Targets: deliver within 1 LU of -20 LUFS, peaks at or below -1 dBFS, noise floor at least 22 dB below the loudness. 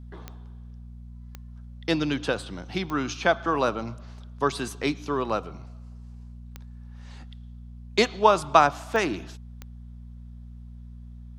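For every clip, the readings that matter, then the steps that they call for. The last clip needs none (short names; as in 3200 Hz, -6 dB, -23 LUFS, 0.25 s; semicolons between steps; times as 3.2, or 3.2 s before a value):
clicks 6; hum 60 Hz; harmonics up to 240 Hz; hum level -40 dBFS; loudness -25.5 LUFS; peak -1.5 dBFS; loudness target -20.0 LUFS
-> de-click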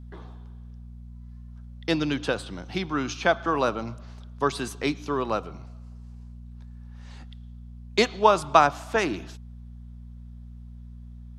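clicks 0; hum 60 Hz; harmonics up to 240 Hz; hum level -40 dBFS
-> de-hum 60 Hz, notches 4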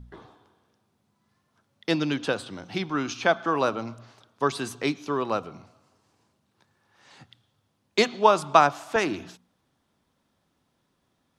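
hum none; loudness -25.5 LUFS; peak -1.5 dBFS; loudness target -20.0 LUFS
-> gain +5.5 dB; limiter -1 dBFS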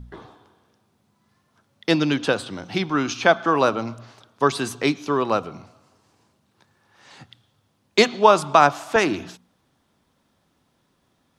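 loudness -20.5 LUFS; peak -1.0 dBFS; noise floor -68 dBFS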